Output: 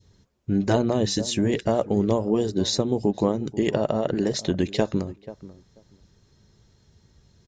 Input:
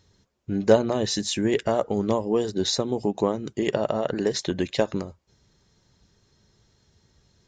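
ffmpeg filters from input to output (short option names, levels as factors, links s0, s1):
-filter_complex "[0:a]lowshelf=f=320:g=6,asplit=2[s0][s1];[s1]adelay=486,lowpass=f=1000:p=1,volume=0.141,asplit=2[s2][s3];[s3]adelay=486,lowpass=f=1000:p=1,volume=0.16[s4];[s0][s2][s4]amix=inputs=3:normalize=0,adynamicequalizer=threshold=0.0178:dfrequency=1400:dqfactor=0.79:tfrequency=1400:tqfactor=0.79:attack=5:release=100:ratio=0.375:range=2:mode=cutabove:tftype=bell,afftfilt=real='re*lt(hypot(re,im),1.12)':imag='im*lt(hypot(re,im),1.12)':win_size=1024:overlap=0.75"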